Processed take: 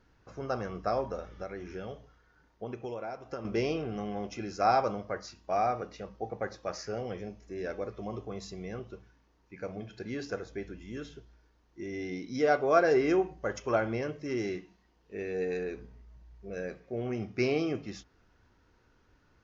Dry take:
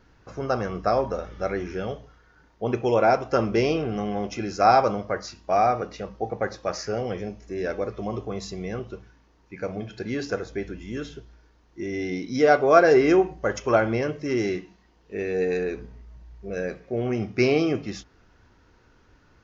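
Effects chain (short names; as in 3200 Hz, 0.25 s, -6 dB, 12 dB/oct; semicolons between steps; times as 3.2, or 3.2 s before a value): 1.25–3.45 compressor 12:1, threshold -27 dBFS, peak gain reduction 13 dB; gain -8 dB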